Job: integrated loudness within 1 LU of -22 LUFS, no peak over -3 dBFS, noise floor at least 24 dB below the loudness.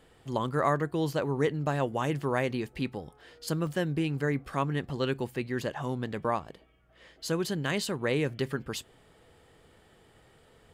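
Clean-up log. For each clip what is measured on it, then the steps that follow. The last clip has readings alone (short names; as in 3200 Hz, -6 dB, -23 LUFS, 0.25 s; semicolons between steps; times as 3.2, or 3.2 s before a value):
dropouts 1; longest dropout 1.3 ms; loudness -31.0 LUFS; peak -12.5 dBFS; loudness target -22.0 LUFS
-> interpolate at 3.67, 1.3 ms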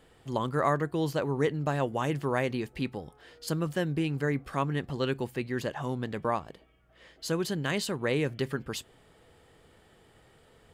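dropouts 0; loudness -31.0 LUFS; peak -12.5 dBFS; loudness target -22.0 LUFS
-> gain +9 dB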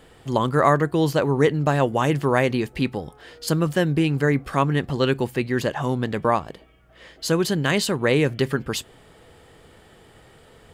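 loudness -22.0 LUFS; peak -3.5 dBFS; noise floor -52 dBFS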